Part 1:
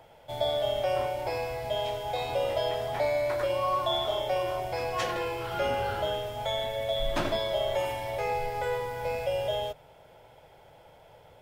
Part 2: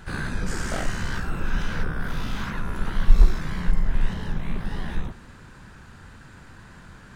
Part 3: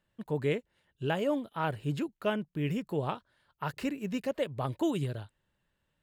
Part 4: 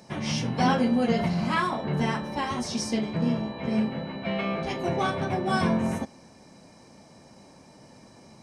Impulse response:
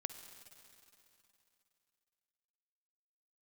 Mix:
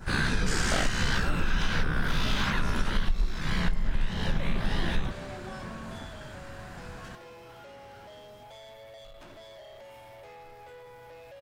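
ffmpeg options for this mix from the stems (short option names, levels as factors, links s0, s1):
-filter_complex "[0:a]acompressor=threshold=0.0355:ratio=6,asoftclip=type=tanh:threshold=0.0178,adelay=2050,volume=0.316[s0];[1:a]adynamicequalizer=threshold=0.00251:dfrequency=3700:dqfactor=0.72:tfrequency=3700:tqfactor=0.72:attack=5:release=100:ratio=0.375:range=4:mode=boostabove:tftype=bell,volume=1.26[s1];[2:a]volume=0.224[s2];[3:a]acompressor=threshold=0.0282:ratio=6,volume=0.355[s3];[s0][s1][s2][s3]amix=inputs=4:normalize=0,acompressor=threshold=0.1:ratio=12"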